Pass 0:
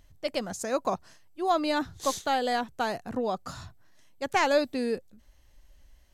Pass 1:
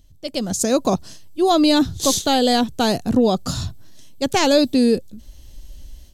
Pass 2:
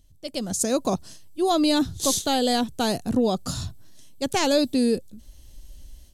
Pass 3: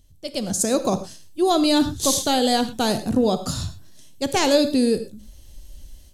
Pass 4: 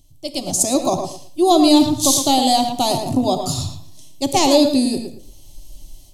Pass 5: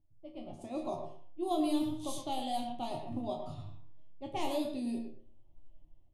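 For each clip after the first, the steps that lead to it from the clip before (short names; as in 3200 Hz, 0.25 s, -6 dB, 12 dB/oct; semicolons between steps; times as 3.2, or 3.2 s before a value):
AGC gain up to 13 dB; EQ curve 270 Hz 0 dB, 980 Hz -12 dB, 2000 Hz -13 dB, 3400 Hz -1 dB; in parallel at -0.5 dB: limiter -15 dBFS, peak gain reduction 7 dB
bell 9800 Hz +6.5 dB 0.62 oct; gain -5.5 dB
non-linear reverb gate 0.14 s flat, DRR 10 dB; gain +2.5 dB
fixed phaser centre 310 Hz, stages 8; tape echo 0.112 s, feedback 23%, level -6 dB, low-pass 2800 Hz; gain +6 dB
band shelf 5600 Hz -12 dB 1.1 oct; resonator bank D#2 sus4, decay 0.29 s; low-pass opened by the level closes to 970 Hz, open at -21.5 dBFS; gain -7.5 dB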